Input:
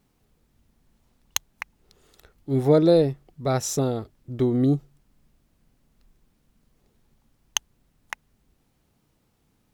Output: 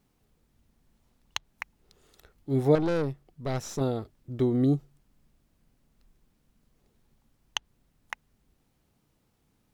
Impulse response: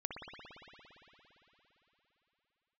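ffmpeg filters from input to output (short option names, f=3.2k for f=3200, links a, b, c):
-filter_complex "[0:a]asettb=1/sr,asplit=3[a][b][c];[a]atrim=end=2.754[d];[b]atrim=start=2.75:end=3.81,asetpts=PTS-STARTPTS,afade=t=in:d=0.004:c=qsin,afade=t=out:st=1.056:d=0.004:c=qsin,aeval=exprs='(tanh(11.2*val(0)+0.5)-tanh(0.5))/11.2':c=same[e];[c]atrim=start=3.806[f];[d][e]acrossfade=d=0.004:c1=hsin:c2=qsin[g];[g][f]acrossfade=d=0.004:c1=qsin:c2=hsin,acrossover=split=4800[h][i];[i]acompressor=threshold=-41dB:ratio=4:attack=1:release=60[j];[h][j]amix=inputs=2:normalize=0,volume=-3dB"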